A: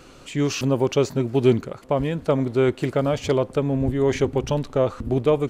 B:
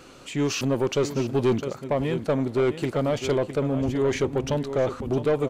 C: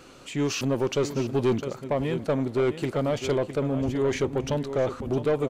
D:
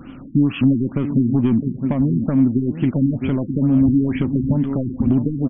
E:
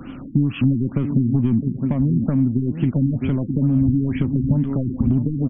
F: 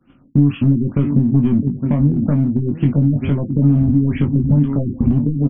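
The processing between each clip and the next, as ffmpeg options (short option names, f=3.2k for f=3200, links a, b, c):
-af "lowshelf=f=87:g=-9,aecho=1:1:659:0.237,asoftclip=type=tanh:threshold=-15.5dB"
-filter_complex "[0:a]asplit=2[a][b];[b]adelay=279.9,volume=-26dB,highshelf=f=4k:g=-6.3[c];[a][c]amix=inputs=2:normalize=0,volume=-1.5dB"
-af "acompressor=threshold=-28dB:ratio=6,lowshelf=f=330:t=q:w=3:g=8,afftfilt=real='re*lt(b*sr/1024,380*pow(3500/380,0.5+0.5*sin(2*PI*2.2*pts/sr)))':imag='im*lt(b*sr/1024,380*pow(3500/380,0.5+0.5*sin(2*PI*2.2*pts/sr)))':win_size=1024:overlap=0.75,volume=6dB"
-filter_complex "[0:a]acrossover=split=200[a][b];[b]acompressor=threshold=-27dB:ratio=6[c];[a][c]amix=inputs=2:normalize=0,volume=2.5dB"
-filter_complex "[0:a]agate=range=-33dB:threshold=-21dB:ratio=3:detection=peak,asplit=2[a][b];[b]aeval=exprs='clip(val(0),-1,0.188)':c=same,volume=-8.5dB[c];[a][c]amix=inputs=2:normalize=0,asplit=2[d][e];[e]adelay=21,volume=-5dB[f];[d][f]amix=inputs=2:normalize=0"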